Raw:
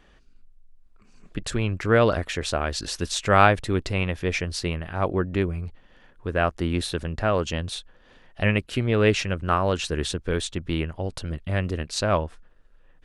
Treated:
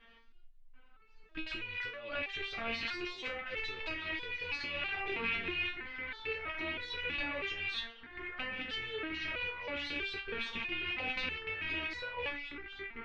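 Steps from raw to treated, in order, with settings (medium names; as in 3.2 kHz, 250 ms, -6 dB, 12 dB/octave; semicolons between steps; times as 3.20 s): rattle on loud lows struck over -40 dBFS, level -19 dBFS; tilt shelf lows -5.5 dB; compressor with a negative ratio -30 dBFS, ratio -1; low-pass 3.7 kHz 24 dB/octave; ever faster or slower copies 736 ms, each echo -3 st, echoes 3, each echo -6 dB; resonator arpeggio 3.1 Hz 230–490 Hz; trim +6 dB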